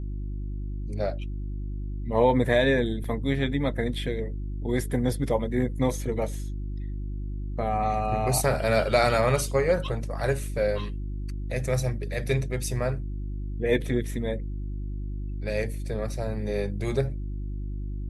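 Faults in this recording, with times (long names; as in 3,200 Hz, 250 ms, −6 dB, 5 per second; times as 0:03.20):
mains hum 50 Hz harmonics 7 −32 dBFS
0:03.04: drop-out 3.9 ms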